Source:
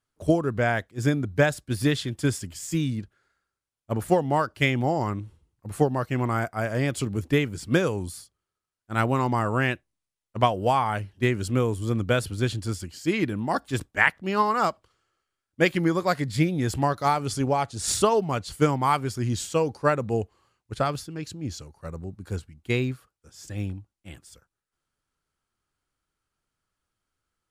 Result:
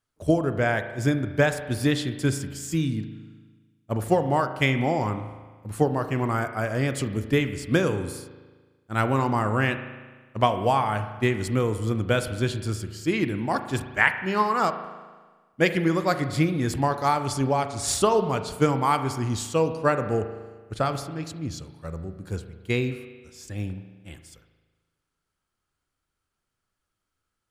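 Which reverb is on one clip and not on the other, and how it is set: spring tank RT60 1.4 s, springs 37 ms, chirp 40 ms, DRR 9 dB

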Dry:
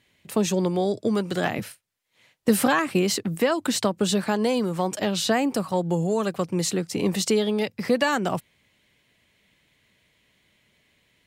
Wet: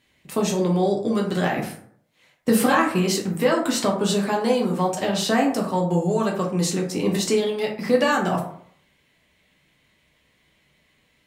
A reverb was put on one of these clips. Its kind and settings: plate-style reverb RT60 0.63 s, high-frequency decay 0.45×, DRR -1.5 dB; gain -1.5 dB

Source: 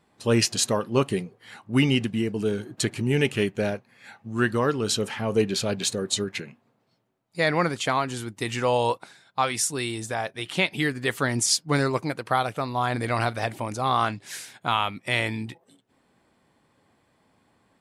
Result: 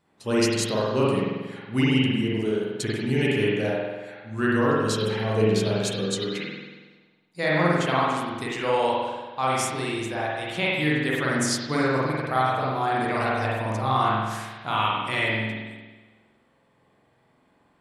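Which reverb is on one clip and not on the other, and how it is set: spring tank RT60 1.3 s, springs 46 ms, chirp 55 ms, DRR -6 dB; gain -5.5 dB

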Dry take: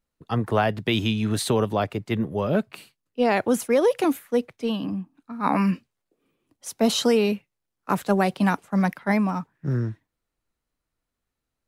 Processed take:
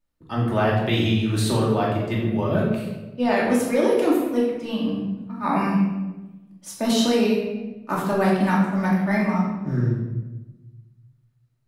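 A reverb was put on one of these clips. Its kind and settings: shoebox room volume 580 m³, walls mixed, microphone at 2.6 m; gain -5 dB

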